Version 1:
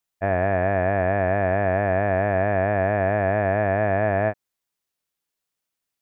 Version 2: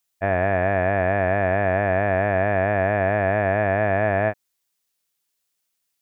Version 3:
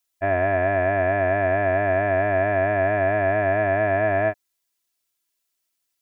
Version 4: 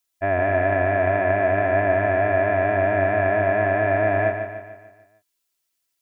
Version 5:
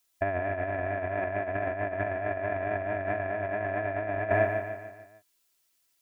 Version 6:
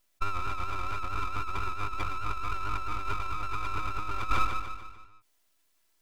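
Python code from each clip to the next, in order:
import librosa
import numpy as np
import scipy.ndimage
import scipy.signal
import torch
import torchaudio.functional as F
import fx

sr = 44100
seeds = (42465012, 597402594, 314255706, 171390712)

y1 = fx.high_shelf(x, sr, hz=2400.0, db=8.5)
y2 = y1 + 0.71 * np.pad(y1, (int(3.0 * sr / 1000.0), 0))[:len(y1)]
y2 = y2 * 10.0 ** (-3.0 / 20.0)
y3 = fx.echo_feedback(y2, sr, ms=148, feedback_pct=49, wet_db=-7.5)
y4 = fx.over_compress(y3, sr, threshold_db=-25.0, ratio=-0.5)
y4 = y4 * 10.0 ** (-3.0 / 20.0)
y5 = fx.spec_expand(y4, sr, power=1.7)
y5 = scipy.signal.sosfilt(scipy.signal.butter(2, 190.0, 'highpass', fs=sr, output='sos'), y5)
y5 = np.abs(y5)
y5 = y5 * 10.0 ** (2.0 / 20.0)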